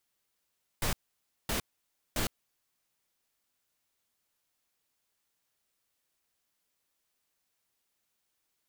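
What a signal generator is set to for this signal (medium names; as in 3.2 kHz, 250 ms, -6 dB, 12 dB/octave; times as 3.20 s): noise bursts pink, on 0.11 s, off 0.56 s, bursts 3, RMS -30.5 dBFS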